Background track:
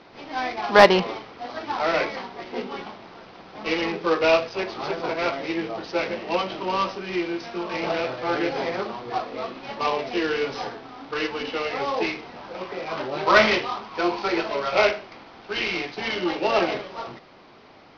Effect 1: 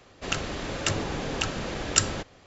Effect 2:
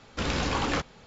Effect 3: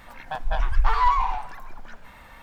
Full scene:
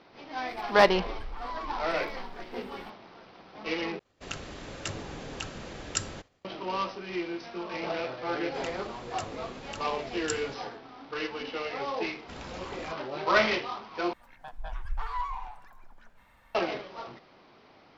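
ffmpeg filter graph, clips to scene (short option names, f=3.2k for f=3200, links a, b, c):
-filter_complex "[3:a]asplit=2[a][b];[1:a]asplit=2[c][d];[0:a]volume=-7dB[e];[a]acompressor=threshold=-29dB:ratio=6:attack=3.2:release=140:knee=1:detection=peak[f];[c]agate=range=-33dB:threshold=-49dB:ratio=3:release=100:detection=peak[g];[e]asplit=3[h][i][j];[h]atrim=end=3.994[k];[g]atrim=end=2.46,asetpts=PTS-STARTPTS,volume=-9dB[l];[i]atrim=start=6.446:end=14.134[m];[b]atrim=end=2.42,asetpts=PTS-STARTPTS,volume=-13.5dB[n];[j]atrim=start=16.546[o];[f]atrim=end=2.42,asetpts=PTS-STARTPTS,volume=-6dB,afade=t=in:d=0.004:c=hsin,afade=t=out:st=2.416:d=0.004:c=hsin,adelay=480[p];[d]atrim=end=2.46,asetpts=PTS-STARTPTS,volume=-14dB,afade=t=in:d=0.004:c=hsin,afade=t=out:st=2.456:d=0.004:c=hsin,adelay=8320[q];[2:a]atrim=end=1.06,asetpts=PTS-STARTPTS,volume=-15dB,afade=t=in:d=0.004:c=hsin,afade=t=out:st=1.056:d=0.004:c=hsin,adelay=12110[r];[k][l]acrossfade=d=0.004:c1=hsin:c2=hsin[s];[s][m]acrossfade=d=0.004:c1=hsin:c2=hsin[t];[t][n]acrossfade=d=0.004:c1=hsin:c2=hsin[u];[u][o]acrossfade=d=0.004:c1=hsin:c2=hsin[v];[v][p][q][r]amix=inputs=4:normalize=0"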